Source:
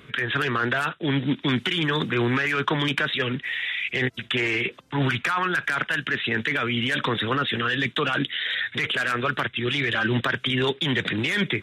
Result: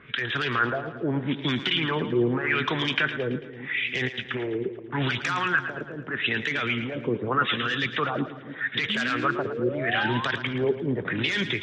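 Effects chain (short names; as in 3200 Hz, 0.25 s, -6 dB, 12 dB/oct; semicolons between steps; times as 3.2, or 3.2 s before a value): LFO low-pass sine 0.81 Hz 400–6200 Hz; painted sound rise, 8.89–10.25, 200–1100 Hz -29 dBFS; split-band echo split 340 Hz, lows 0.291 s, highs 0.111 s, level -11 dB; gain -4 dB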